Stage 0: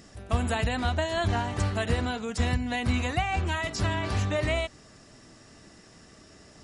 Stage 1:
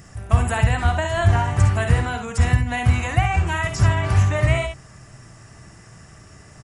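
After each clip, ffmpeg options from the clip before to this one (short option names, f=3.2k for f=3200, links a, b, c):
-filter_complex "[0:a]equalizer=f=125:t=o:w=1:g=8,equalizer=f=250:t=o:w=1:g=-10,equalizer=f=500:t=o:w=1:g=-6,equalizer=f=4k:t=o:w=1:g=-12,asplit=2[a][b];[b]aecho=0:1:54|69:0.355|0.355[c];[a][c]amix=inputs=2:normalize=0,volume=8.5dB"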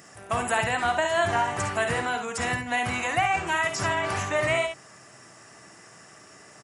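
-af "highpass=310"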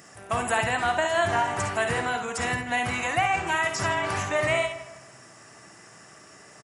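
-filter_complex "[0:a]asplit=2[a][b];[b]adelay=159,lowpass=f=2.3k:p=1,volume=-13dB,asplit=2[c][d];[d]adelay=159,lowpass=f=2.3k:p=1,volume=0.42,asplit=2[e][f];[f]adelay=159,lowpass=f=2.3k:p=1,volume=0.42,asplit=2[g][h];[h]adelay=159,lowpass=f=2.3k:p=1,volume=0.42[i];[a][c][e][g][i]amix=inputs=5:normalize=0"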